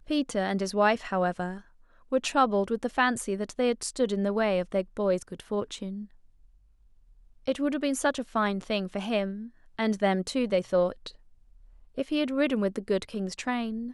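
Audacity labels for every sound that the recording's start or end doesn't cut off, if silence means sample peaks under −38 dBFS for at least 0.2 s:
2.120000	6.050000	sound
7.470000	9.470000	sound
9.790000	11.090000	sound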